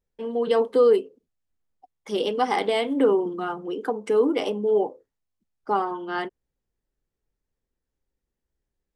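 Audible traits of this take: noise floor -84 dBFS; spectral tilt -3.0 dB/octave

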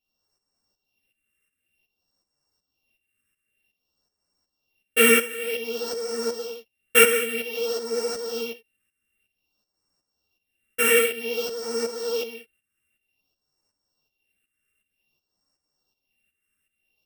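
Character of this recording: a buzz of ramps at a fixed pitch in blocks of 16 samples; phasing stages 4, 0.53 Hz, lowest notch 800–2900 Hz; tremolo saw up 2.7 Hz, depth 70%; a shimmering, thickened sound

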